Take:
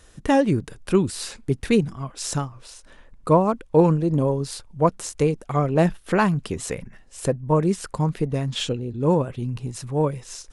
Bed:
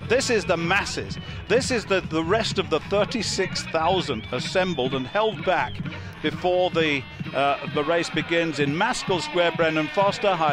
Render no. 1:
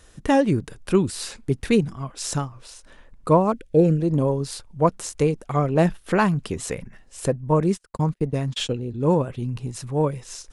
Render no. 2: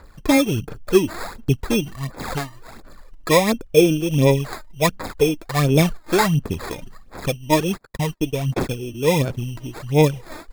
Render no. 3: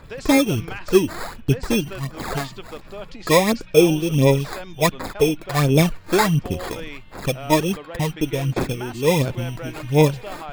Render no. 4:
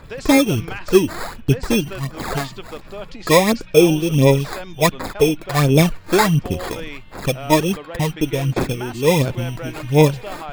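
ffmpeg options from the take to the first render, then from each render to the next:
-filter_complex "[0:a]asettb=1/sr,asplit=3[a][b][c];[a]atrim=end=3.524[d];[b]atrim=start=3.52:end=4,asetpts=PTS-STARTPTS,afade=t=in:d=0.004:c=qsin,afade=t=out:st=0.476:d=0.004:c=qsin,asuperstop=centerf=1000:order=4:qfactor=0.97[e];[c]atrim=start=3.996[f];[d][e]acrossfade=d=0.004:c1=hsin:c2=qsin[g];[g][f]acrossfade=d=0.004:c1=qsin:c2=hsin,asettb=1/sr,asplit=3[h][i][j];[h]atrim=end=7.604[k];[i]atrim=start=7.6:end=8.79,asetpts=PTS-STARTPTS,afade=t=in:d=0.004:c=qsin,afade=t=out:st=1.186:d=0.004:c=qsin,agate=range=-38dB:threshold=-31dB:ratio=16:release=100:detection=peak[l];[j]atrim=start=8.786[m];[k][l]acrossfade=d=0.004:c1=hsin:c2=qsin[n];[n][m]acrossfade=d=0.004:c1=qsin:c2=hsin"
-af "acrusher=samples=15:mix=1:aa=0.000001,aphaser=in_gain=1:out_gain=1:delay=3.3:decay=0.59:speed=1.4:type=sinusoidal"
-filter_complex "[1:a]volume=-14dB[a];[0:a][a]amix=inputs=2:normalize=0"
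-af "volume=2.5dB,alimiter=limit=-1dB:level=0:latency=1"

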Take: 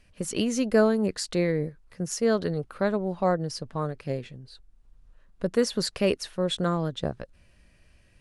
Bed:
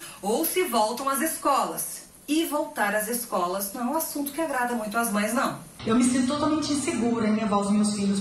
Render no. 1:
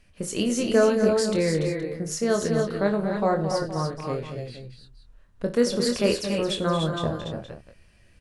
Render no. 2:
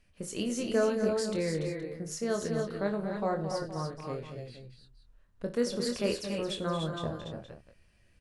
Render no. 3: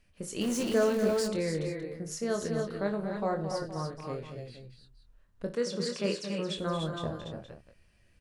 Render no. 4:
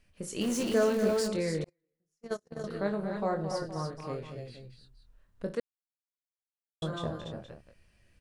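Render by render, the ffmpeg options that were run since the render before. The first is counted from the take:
-filter_complex "[0:a]asplit=2[a][b];[b]adelay=25,volume=-6dB[c];[a][c]amix=inputs=2:normalize=0,aecho=1:1:58|97|223|284|293|470:0.188|0.106|0.335|0.398|0.398|0.2"
-af "volume=-8dB"
-filter_complex "[0:a]asettb=1/sr,asplit=3[a][b][c];[a]atrim=end=0.414[d];[b]atrim=start=0.41:end=1.28,asetpts=PTS-STARTPTS,afade=t=in:d=0.004:c=qsin,afade=t=out:st=0.866:d=0.004:c=qsin,aeval=exprs='val(0)+0.5*0.0178*sgn(val(0))':c=same[e];[c]atrim=start=1.276[f];[d][e]acrossfade=d=0.004:c1=hsin:c2=qsin[g];[g][f]acrossfade=d=0.004:c1=qsin:c2=hsin,asettb=1/sr,asplit=3[h][i][j];[h]atrim=end=5.554[k];[i]atrim=start=5.55:end=6.58,asetpts=PTS-STARTPTS,afade=t=in:d=0.004:c=qsin,afade=t=out:st=1.026:d=0.004:c=qsin,highpass=f=160:w=0.5412,highpass=f=160:w=1.3066,equalizer=f=170:t=q:w=4:g=9,equalizer=f=250:t=q:w=4:g=-8,equalizer=f=720:t=q:w=4:g=-6,lowpass=f=8.6k:w=0.5412,lowpass=f=8.6k:w=1.3066[l];[j]atrim=start=6.576[m];[k][l]acrossfade=d=0.004:c1=hsin:c2=qsin[n];[n][m]acrossfade=d=0.004:c1=qsin:c2=hsin"
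-filter_complex "[0:a]asettb=1/sr,asplit=3[a][b][c];[a]atrim=end=1.644[d];[b]atrim=start=1.64:end=2.64,asetpts=PTS-STARTPTS,afade=t=in:d=0.004:c=qsin,afade=t=out:st=0.996:d=0.004:c=qsin,agate=range=-44dB:threshold=-29dB:ratio=16:release=100:detection=peak[e];[c]atrim=start=2.636[f];[d][e]acrossfade=d=0.004:c1=hsin:c2=qsin[g];[g][f]acrossfade=d=0.004:c1=qsin:c2=hsin,asplit=3[h][i][j];[h]atrim=end=5.6,asetpts=PTS-STARTPTS,afade=t=out:st=5.596:d=0.004:c=hsin[k];[i]atrim=start=5.6:end=6.82,asetpts=PTS-STARTPTS,volume=0[l];[j]atrim=start=6.82,asetpts=PTS-STARTPTS,afade=t=in:d=0.004:c=hsin[m];[k][l][m]concat=n=3:v=0:a=1"

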